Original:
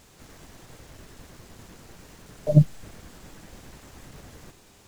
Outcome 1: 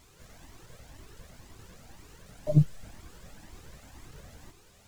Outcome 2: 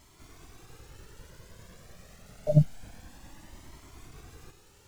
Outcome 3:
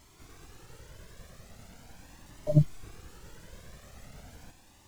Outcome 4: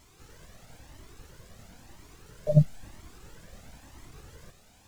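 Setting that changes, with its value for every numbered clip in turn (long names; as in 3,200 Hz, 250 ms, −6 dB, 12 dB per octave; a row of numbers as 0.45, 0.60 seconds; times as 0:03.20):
flanger whose copies keep moving one way, speed: 2, 0.27, 0.4, 1 Hertz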